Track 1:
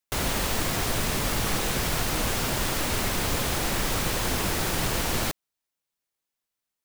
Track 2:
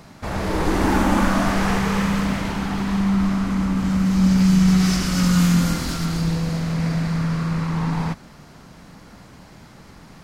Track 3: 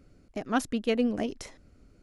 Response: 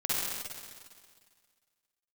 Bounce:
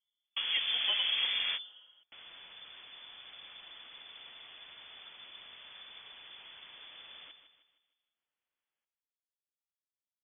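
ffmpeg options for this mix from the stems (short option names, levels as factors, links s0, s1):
-filter_complex "[0:a]acompressor=mode=upward:threshold=0.00251:ratio=2.5,acompressor=threshold=0.0112:ratio=1.5,adelay=2000,volume=0.112,asplit=2[s0][s1];[s1]volume=0.316[s2];[1:a]volume=0.335[s3];[2:a]agate=range=0.0316:threshold=0.00501:ratio=16:detection=peak,asplit=2[s4][s5];[s5]adelay=4.9,afreqshift=1.4[s6];[s4][s6]amix=inputs=2:normalize=1,volume=1.06,asplit=3[s7][s8][s9];[s8]volume=0.0841[s10];[s9]apad=whole_len=451441[s11];[s3][s11]sidechaingate=range=0.001:threshold=0.00224:ratio=16:detection=peak[s12];[3:a]atrim=start_sample=2205[s13];[s10][s13]afir=irnorm=-1:irlink=0[s14];[s2]aecho=0:1:155|310|465|620|775|930:1|0.42|0.176|0.0741|0.0311|0.0131[s15];[s0][s12][s7][s14][s15]amix=inputs=5:normalize=0,lowpass=f=3000:t=q:w=0.5098,lowpass=f=3000:t=q:w=0.6013,lowpass=f=3000:t=q:w=0.9,lowpass=f=3000:t=q:w=2.563,afreqshift=-3500,acompressor=threshold=0.0224:ratio=2"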